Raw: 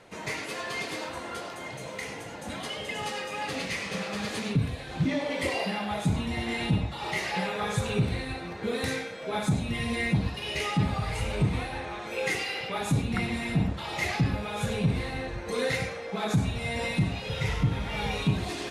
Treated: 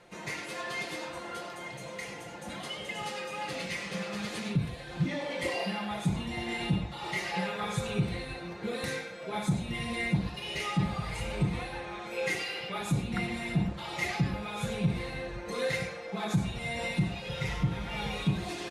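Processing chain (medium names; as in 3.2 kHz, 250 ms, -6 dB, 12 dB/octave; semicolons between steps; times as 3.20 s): comb 5.7 ms, depth 49%; trim -4.5 dB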